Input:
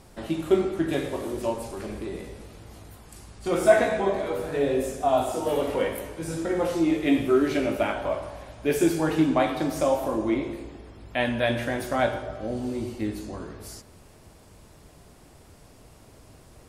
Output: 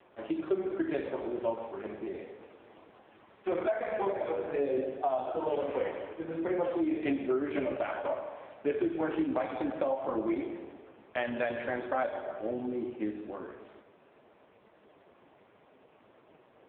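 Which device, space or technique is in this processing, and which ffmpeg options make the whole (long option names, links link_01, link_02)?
voicemail: -af "highpass=310,lowpass=2800,acompressor=threshold=-25dB:ratio=10" -ar 8000 -c:a libopencore_amrnb -b:a 5150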